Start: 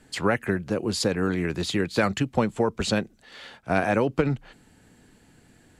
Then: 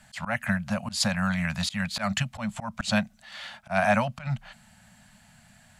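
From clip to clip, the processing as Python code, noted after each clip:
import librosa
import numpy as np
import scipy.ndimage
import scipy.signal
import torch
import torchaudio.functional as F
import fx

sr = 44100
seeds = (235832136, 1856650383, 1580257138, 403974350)

y = scipy.signal.sosfilt(scipy.signal.ellip(3, 1.0, 40, [220.0, 610.0], 'bandstop', fs=sr, output='sos'), x)
y = fx.low_shelf(y, sr, hz=130.0, db=-6.0)
y = fx.auto_swell(y, sr, attack_ms=143.0)
y = y * 10.0 ** (4.0 / 20.0)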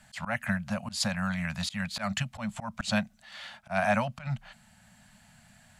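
y = fx.rider(x, sr, range_db=4, speed_s=2.0)
y = y * 10.0 ** (-4.5 / 20.0)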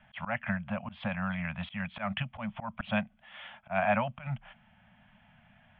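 y = scipy.signal.sosfilt(scipy.signal.cheby1(6, 3, 3400.0, 'lowpass', fs=sr, output='sos'), x)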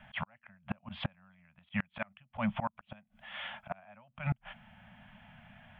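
y = fx.gate_flip(x, sr, shuts_db=-26.0, range_db=-34)
y = y * 10.0 ** (5.0 / 20.0)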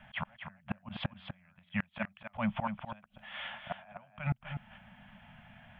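y = x + 10.0 ** (-8.5 / 20.0) * np.pad(x, (int(248 * sr / 1000.0), 0))[:len(x)]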